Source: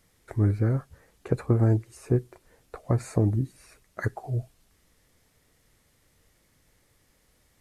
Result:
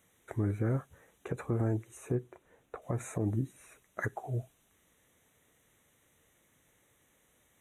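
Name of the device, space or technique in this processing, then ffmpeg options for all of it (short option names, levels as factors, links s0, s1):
PA system with an anti-feedback notch: -filter_complex "[0:a]highpass=f=170:p=1,asuperstop=centerf=4800:order=12:qfactor=2.7,alimiter=limit=0.106:level=0:latency=1:release=79,asettb=1/sr,asplit=3[s0][s1][s2];[s0]atrim=end=2.154[s3];[s1]atrim=start=2.15:end=2.82,asetpts=PTS-STARTPTS,afade=t=in:d=0.004:c=qsin,afade=t=out:st=0.666:d=0.004:c=qsin,highshelf=f=4000:g=-10[s4];[s2]atrim=start=2.816[s5];[s3][s4]acrossfade=d=0.004:c1=hsin:c2=qsin[s6];[s6][s5]acrossfade=d=0.004:c1=qsin:c2=hsin,volume=0.841"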